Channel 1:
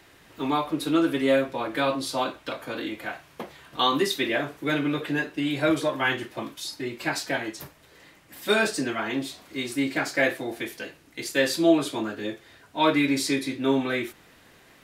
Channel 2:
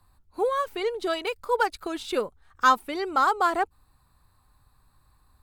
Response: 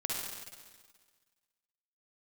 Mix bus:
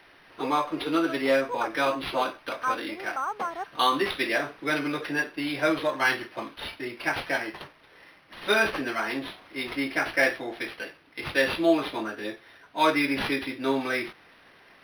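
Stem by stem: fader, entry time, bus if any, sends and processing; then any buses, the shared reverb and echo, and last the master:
+2.0 dB, 0.00 s, no send, LPF 9700 Hz 12 dB/oct; tilt +3.5 dB/oct
-16.0 dB, 0.00 s, no send, bell 1100 Hz +9 dB 2.8 oct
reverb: off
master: bell 5800 Hz -12.5 dB 1.3 oct; decimation joined by straight lines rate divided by 6×

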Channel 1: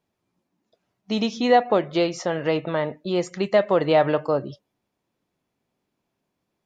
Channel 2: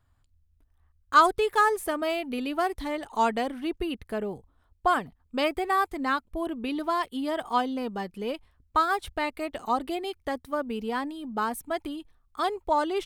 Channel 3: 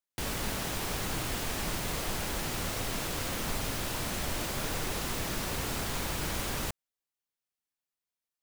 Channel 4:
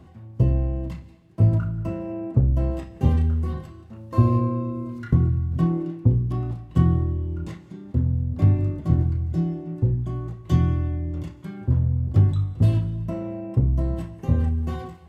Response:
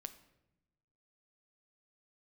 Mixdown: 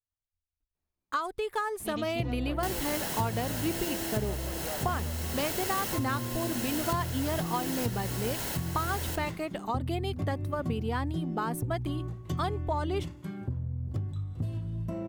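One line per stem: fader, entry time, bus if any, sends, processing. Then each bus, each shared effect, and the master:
-12.5 dB, 0.75 s, bus A, no send, echo send -20 dB, tube stage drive 13 dB, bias 0.65
-1.5 dB, 0.00 s, no bus, no send, no echo send, expander -48 dBFS; compressor 16:1, threshold -26 dBFS, peak gain reduction 14.5 dB
+2.5 dB, 2.45 s, bus A, no send, echo send -14.5 dB, notch comb 1200 Hz
-3.0 dB, 1.80 s, bus A, no send, no echo send, dry
bus A: 0.0 dB, high shelf 8400 Hz +8 dB; compressor 10:1, threshold -30 dBFS, peak gain reduction 16 dB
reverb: off
echo: feedback echo 0.148 s, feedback 31%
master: dry

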